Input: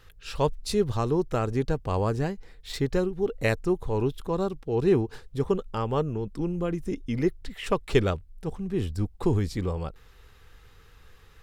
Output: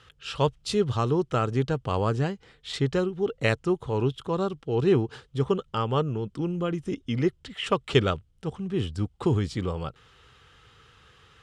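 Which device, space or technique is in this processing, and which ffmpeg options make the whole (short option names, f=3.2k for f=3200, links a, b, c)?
car door speaker: -af "highpass=84,equalizer=f=130:t=q:w=4:g=5,equalizer=f=1.3k:t=q:w=4:g=6,equalizer=f=3.1k:t=q:w=4:g=9,lowpass=f=9.2k:w=0.5412,lowpass=f=9.2k:w=1.3066"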